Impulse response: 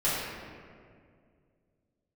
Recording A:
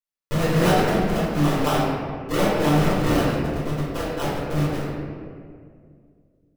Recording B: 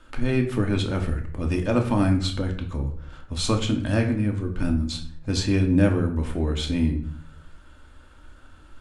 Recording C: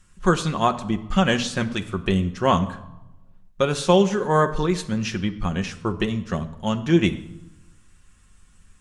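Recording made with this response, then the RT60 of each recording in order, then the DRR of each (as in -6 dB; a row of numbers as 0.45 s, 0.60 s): A; 2.1 s, 0.50 s, 0.90 s; -11.0 dB, 2.5 dB, 5.5 dB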